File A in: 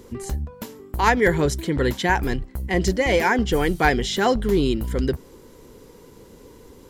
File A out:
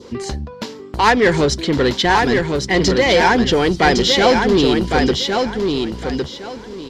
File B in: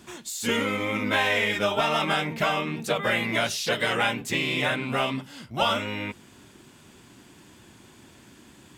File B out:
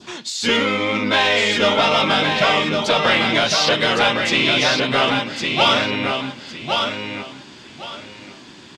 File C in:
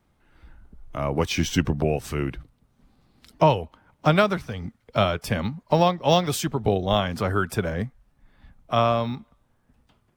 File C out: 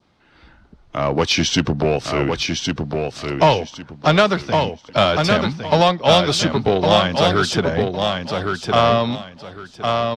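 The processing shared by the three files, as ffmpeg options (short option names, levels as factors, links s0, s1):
-filter_complex "[0:a]highpass=f=170:p=1,adynamicequalizer=threshold=0.01:dfrequency=2000:dqfactor=1.7:tfrequency=2000:tqfactor=1.7:attack=5:release=100:ratio=0.375:range=2.5:mode=cutabove:tftype=bell,asplit=2[s0][s1];[s1]aeval=exprs='0.0794*(abs(mod(val(0)/0.0794+3,4)-2)-1)':c=same,volume=0.316[s2];[s0][s2]amix=inputs=2:normalize=0,lowpass=f=4700:t=q:w=1.9,asoftclip=type=tanh:threshold=0.355,asplit=2[s3][s4];[s4]aecho=0:1:1109|2218|3327:0.596|0.137|0.0315[s5];[s3][s5]amix=inputs=2:normalize=0,volume=2"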